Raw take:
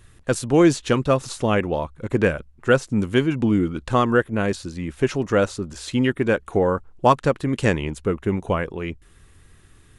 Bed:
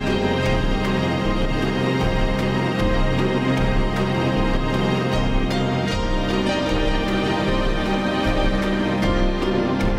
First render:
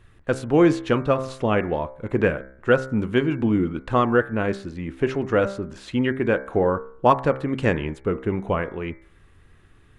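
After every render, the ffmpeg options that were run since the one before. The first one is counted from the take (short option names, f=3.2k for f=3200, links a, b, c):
-af "bass=f=250:g=-2,treble=f=4k:g=-14,bandreject=f=65.79:t=h:w=4,bandreject=f=131.58:t=h:w=4,bandreject=f=197.37:t=h:w=4,bandreject=f=263.16:t=h:w=4,bandreject=f=328.95:t=h:w=4,bandreject=f=394.74:t=h:w=4,bandreject=f=460.53:t=h:w=4,bandreject=f=526.32:t=h:w=4,bandreject=f=592.11:t=h:w=4,bandreject=f=657.9:t=h:w=4,bandreject=f=723.69:t=h:w=4,bandreject=f=789.48:t=h:w=4,bandreject=f=855.27:t=h:w=4,bandreject=f=921.06:t=h:w=4,bandreject=f=986.85:t=h:w=4,bandreject=f=1.05264k:t=h:w=4,bandreject=f=1.11843k:t=h:w=4,bandreject=f=1.18422k:t=h:w=4,bandreject=f=1.25001k:t=h:w=4,bandreject=f=1.3158k:t=h:w=4,bandreject=f=1.38159k:t=h:w=4,bandreject=f=1.44738k:t=h:w=4,bandreject=f=1.51317k:t=h:w=4,bandreject=f=1.57896k:t=h:w=4,bandreject=f=1.64475k:t=h:w=4,bandreject=f=1.71054k:t=h:w=4,bandreject=f=1.77633k:t=h:w=4,bandreject=f=1.84212k:t=h:w=4,bandreject=f=1.90791k:t=h:w=4,bandreject=f=1.9737k:t=h:w=4,bandreject=f=2.03949k:t=h:w=4,bandreject=f=2.10528k:t=h:w=4,bandreject=f=2.17107k:t=h:w=4,bandreject=f=2.23686k:t=h:w=4,bandreject=f=2.30265k:t=h:w=4"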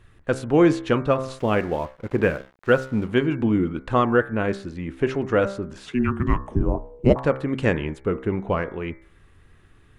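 -filter_complex "[0:a]asettb=1/sr,asplit=3[a][b][c];[a]atrim=end=1.394[d];[b]atrim=start=1.39:end=3.13,asetpts=PTS-STARTPTS,afade=t=in:d=0.004:c=qsin,afade=t=out:st=1.736:d=0.004:c=qsin,aeval=exprs='sgn(val(0))*max(abs(val(0))-0.00631,0)':c=same[e];[c]atrim=start=3.126[f];[d][e]acrossfade=d=0.004:c1=hsin:c2=qsin[g];[g][f]acrossfade=d=0.004:c1=qsin:c2=hsin,asettb=1/sr,asplit=3[h][i][j];[h]atrim=end=5.864[k];[i]atrim=start=5.86:end=7.16,asetpts=PTS-STARTPTS,afade=t=in:d=0.004:c=qsin,afade=t=out:st=1.296:d=0.004:c=qsin,afreqshift=-490[l];[j]atrim=start=7.156[m];[k][l]acrossfade=d=0.004:c1=hsin:c2=qsin[n];[n][m]acrossfade=d=0.004:c1=qsin:c2=hsin,asettb=1/sr,asplit=3[o][p][q];[o]atrim=end=8.274[r];[p]atrim=start=8.27:end=8.7,asetpts=PTS-STARTPTS,afade=t=in:d=0.004:c=qsin,afade=t=out:st=0.426:d=0.004:c=qsin,adynamicsmooth=sensitivity=1.5:basefreq=5.4k[s];[q]atrim=start=8.696[t];[r][s]acrossfade=d=0.004:c1=hsin:c2=qsin[u];[u][t]acrossfade=d=0.004:c1=qsin:c2=hsin"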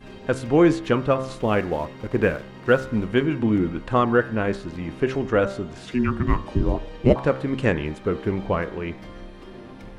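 -filter_complex "[1:a]volume=-21dB[a];[0:a][a]amix=inputs=2:normalize=0"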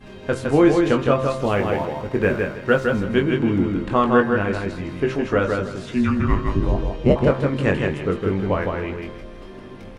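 -filter_complex "[0:a]asplit=2[a][b];[b]adelay=21,volume=-6dB[c];[a][c]amix=inputs=2:normalize=0,aecho=1:1:161|322|483:0.631|0.151|0.0363"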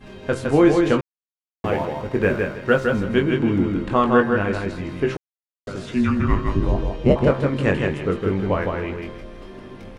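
-filter_complex "[0:a]asplit=5[a][b][c][d][e];[a]atrim=end=1.01,asetpts=PTS-STARTPTS,afade=t=out:st=1.006:d=0.004:c=hsin[f];[b]atrim=start=1.01:end=1.64,asetpts=PTS-STARTPTS,volume=0[g];[c]atrim=start=1.64:end=5.17,asetpts=PTS-STARTPTS,afade=t=in:d=0.004:c=hsin,afade=t=out:st=3.526:d=0.004:c=hsin[h];[d]atrim=start=5.17:end=5.67,asetpts=PTS-STARTPTS,volume=0[i];[e]atrim=start=5.67,asetpts=PTS-STARTPTS,afade=t=in:d=0.004:c=hsin[j];[f][g][h][i][j]concat=n=5:v=0:a=1"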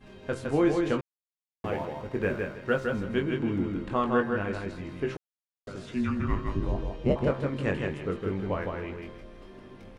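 -af "volume=-9dB"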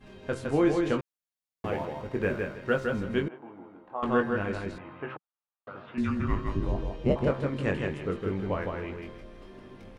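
-filter_complex "[0:a]asettb=1/sr,asplit=3[a][b][c];[a]atrim=end=3.284[d];[b]atrim=start=3.28:end=4.03,asetpts=PTS-STARTPTS,afade=t=in:d=0.004:c=qsin,afade=t=out:st=0.746:d=0.004:c=qsin,bandpass=f=800:t=q:w=3.6[e];[c]atrim=start=4.026[f];[d][e]acrossfade=d=0.004:c1=hsin:c2=qsin[g];[g][f]acrossfade=d=0.004:c1=qsin:c2=hsin,asettb=1/sr,asplit=3[h][i][j];[h]atrim=end=4.784[k];[i]atrim=start=4.78:end=5.98,asetpts=PTS-STARTPTS,afade=t=in:d=0.004:c=qsin,afade=t=out:st=1.196:d=0.004:c=qsin,highpass=170,equalizer=f=180:t=q:w=4:g=-9,equalizer=f=270:t=q:w=4:g=-7,equalizer=f=390:t=q:w=4:g=-9,equalizer=f=850:t=q:w=4:g=7,equalizer=f=1.2k:t=q:w=4:g=8,equalizer=f=2.1k:t=q:w=4:g=-5,lowpass=f=2.7k:w=0.5412,lowpass=f=2.7k:w=1.3066[l];[j]atrim=start=5.976[m];[k][l]acrossfade=d=0.004:c1=hsin:c2=qsin[n];[n][m]acrossfade=d=0.004:c1=qsin:c2=hsin"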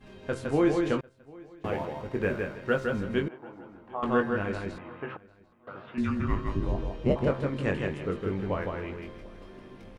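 -filter_complex "[0:a]asplit=2[a][b];[b]adelay=746,lowpass=f=4.5k:p=1,volume=-23.5dB,asplit=2[c][d];[d]adelay=746,lowpass=f=4.5k:p=1,volume=0.23[e];[a][c][e]amix=inputs=3:normalize=0"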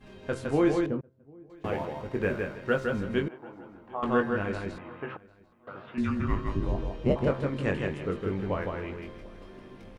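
-filter_complex "[0:a]asettb=1/sr,asplit=3[a][b][c];[a]atrim=end=0.864[d];[b]atrim=start=0.86:end=1.5,asetpts=PTS-STARTPTS,afade=t=in:d=0.004:c=qsin,afade=t=out:st=0.636:d=0.004:c=qsin,bandpass=f=160:t=q:w=0.59[e];[c]atrim=start=1.496[f];[d][e]acrossfade=d=0.004:c1=hsin:c2=qsin[g];[g][f]acrossfade=d=0.004:c1=qsin:c2=hsin"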